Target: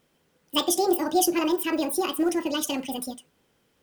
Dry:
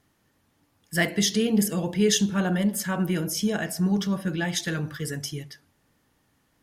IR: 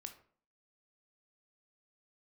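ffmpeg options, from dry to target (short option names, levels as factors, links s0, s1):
-af "acrusher=bits=8:mode=log:mix=0:aa=0.000001,asetrate=76440,aresample=44100"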